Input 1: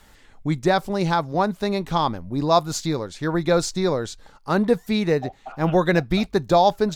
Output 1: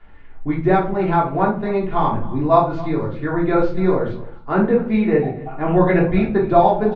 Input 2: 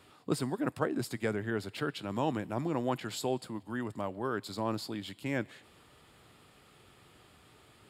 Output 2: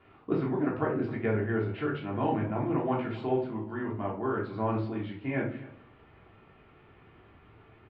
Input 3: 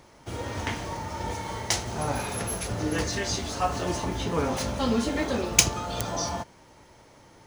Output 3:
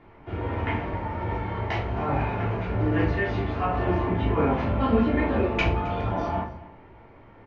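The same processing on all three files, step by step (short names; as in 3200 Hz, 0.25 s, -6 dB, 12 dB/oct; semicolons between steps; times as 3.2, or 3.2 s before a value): LPF 2500 Hz 24 dB/oct; echo 0.266 s -19 dB; shoebox room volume 300 m³, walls furnished, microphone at 3.2 m; gain -3 dB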